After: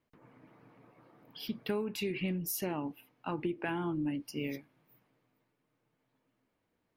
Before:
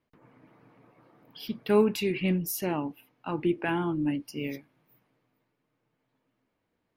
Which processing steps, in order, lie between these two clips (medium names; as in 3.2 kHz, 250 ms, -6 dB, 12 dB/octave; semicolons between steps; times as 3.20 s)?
compression 8:1, threshold -29 dBFS, peak gain reduction 13 dB; trim -1.5 dB